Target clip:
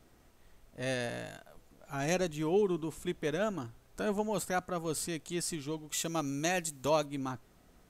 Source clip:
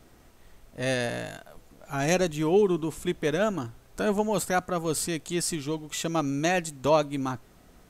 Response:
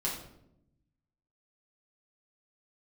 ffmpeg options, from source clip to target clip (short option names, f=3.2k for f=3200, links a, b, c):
-filter_complex "[0:a]asettb=1/sr,asplit=3[a][b][c];[a]atrim=end=5.924[d];[b]atrim=start=5.92:end=7.06,asetpts=PTS-STARTPTS,afade=t=in:d=0.004:c=qsin,afade=t=out:st=1.136:d=0.004:c=qsin,aemphasis=mode=production:type=cd[e];[c]atrim=start=7.056[f];[d][e]acrossfade=d=0.004:c1=hsin:c2=qsin[g];[g][f]acrossfade=d=0.004:c1=qsin:c2=hsin,volume=-7dB"